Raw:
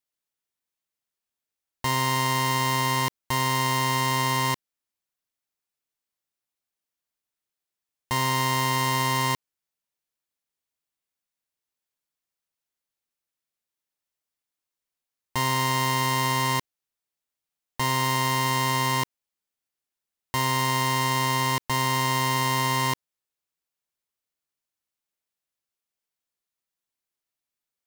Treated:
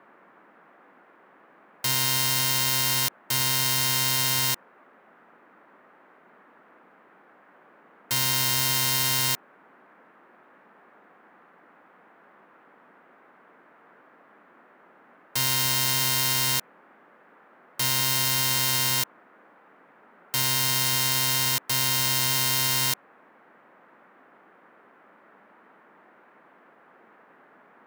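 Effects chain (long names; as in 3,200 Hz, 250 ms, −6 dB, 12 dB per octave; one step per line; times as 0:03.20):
spectral envelope flattened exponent 0.1
noise in a band 190–1,700 Hz −56 dBFS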